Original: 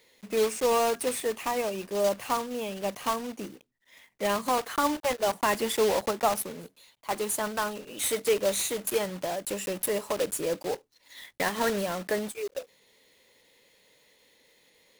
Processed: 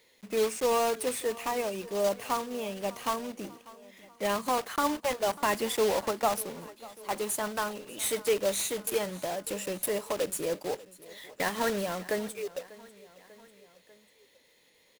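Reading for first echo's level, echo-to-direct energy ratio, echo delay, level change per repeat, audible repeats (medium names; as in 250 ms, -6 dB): -20.0 dB, -18.5 dB, 594 ms, -4.5 dB, 3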